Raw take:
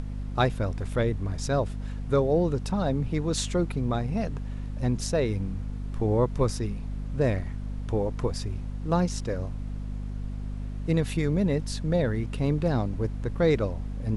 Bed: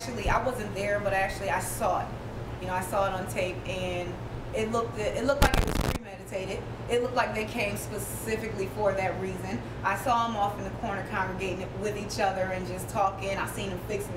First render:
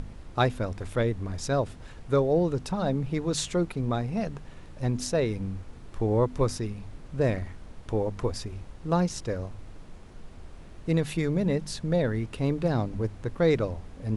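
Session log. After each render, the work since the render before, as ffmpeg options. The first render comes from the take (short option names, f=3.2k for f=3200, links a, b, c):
-af "bandreject=f=50:t=h:w=4,bandreject=f=100:t=h:w=4,bandreject=f=150:t=h:w=4,bandreject=f=200:t=h:w=4,bandreject=f=250:t=h:w=4"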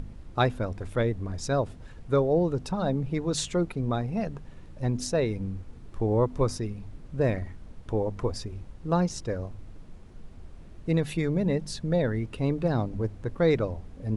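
-af "afftdn=nr=6:nf=-46"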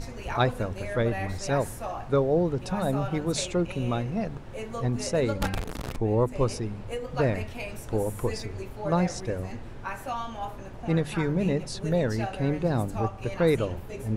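-filter_complex "[1:a]volume=-7.5dB[a];[0:a][a]amix=inputs=2:normalize=0"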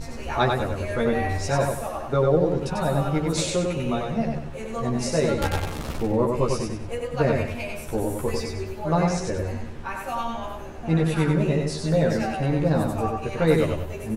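-filter_complex "[0:a]asplit=2[a][b];[b]adelay=13,volume=-2dB[c];[a][c]amix=inputs=2:normalize=0,asplit=2[d][e];[e]aecho=0:1:95|190|285|380|475:0.668|0.241|0.0866|0.0312|0.0112[f];[d][f]amix=inputs=2:normalize=0"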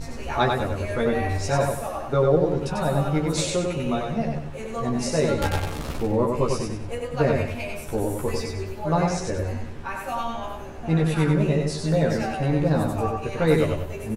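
-filter_complex "[0:a]asplit=2[a][b];[b]adelay=20,volume=-12.5dB[c];[a][c]amix=inputs=2:normalize=0"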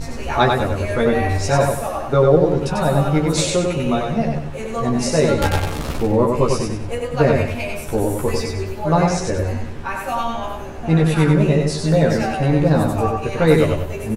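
-af "volume=6dB,alimiter=limit=-2dB:level=0:latency=1"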